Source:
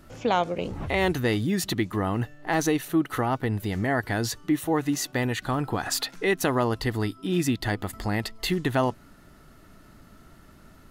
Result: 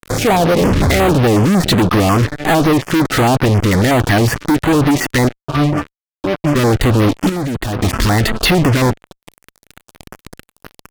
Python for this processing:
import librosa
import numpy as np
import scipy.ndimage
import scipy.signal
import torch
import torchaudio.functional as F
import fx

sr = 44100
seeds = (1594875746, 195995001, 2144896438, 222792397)

y = fx.env_lowpass_down(x, sr, base_hz=760.0, full_db=-19.5)
y = fx.octave_resonator(y, sr, note='D', decay_s=0.3, at=(5.27, 6.55), fade=0.02)
y = fx.fuzz(y, sr, gain_db=46.0, gate_db=-43.0)
y = fx.level_steps(y, sr, step_db=22, at=(7.29, 7.79))
y = fx.filter_held_notch(y, sr, hz=11.0, low_hz=750.0, high_hz=7500.0)
y = F.gain(torch.from_numpy(y), 3.5).numpy()